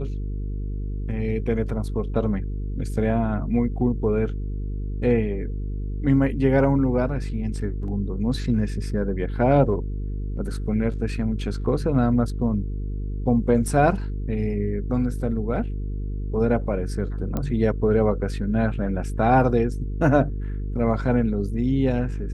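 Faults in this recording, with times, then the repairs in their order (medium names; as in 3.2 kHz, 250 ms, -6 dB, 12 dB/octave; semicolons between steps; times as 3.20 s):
buzz 50 Hz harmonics 9 -28 dBFS
17.37 s: pop -14 dBFS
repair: de-click; de-hum 50 Hz, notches 9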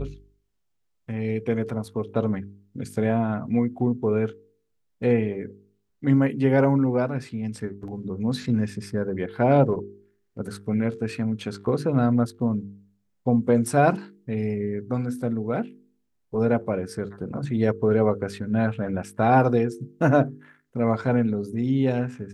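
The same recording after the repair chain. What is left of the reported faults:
nothing left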